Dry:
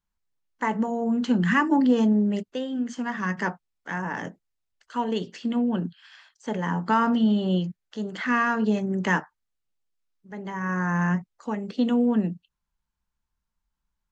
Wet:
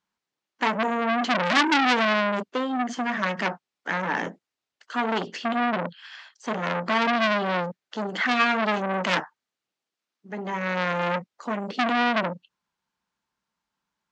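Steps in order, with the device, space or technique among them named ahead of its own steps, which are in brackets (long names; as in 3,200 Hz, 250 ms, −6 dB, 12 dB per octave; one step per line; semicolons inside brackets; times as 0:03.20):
public-address speaker with an overloaded transformer (saturating transformer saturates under 3,200 Hz; band-pass filter 220–6,100 Hz)
level +7.5 dB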